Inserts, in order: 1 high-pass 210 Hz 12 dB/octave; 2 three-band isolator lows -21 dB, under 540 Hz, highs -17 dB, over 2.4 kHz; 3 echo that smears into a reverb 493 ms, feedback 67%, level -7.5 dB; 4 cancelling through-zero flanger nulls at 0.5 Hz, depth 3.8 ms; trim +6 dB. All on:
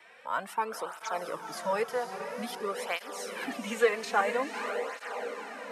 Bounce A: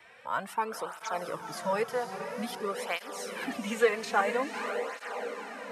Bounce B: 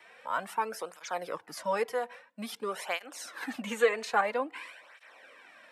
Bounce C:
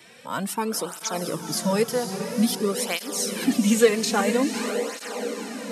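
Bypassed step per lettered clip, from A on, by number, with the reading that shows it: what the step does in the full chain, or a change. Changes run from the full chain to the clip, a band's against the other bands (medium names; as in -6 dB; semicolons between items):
1, 125 Hz band +4.0 dB; 3, momentary loudness spread change +5 LU; 2, 1 kHz band -13.0 dB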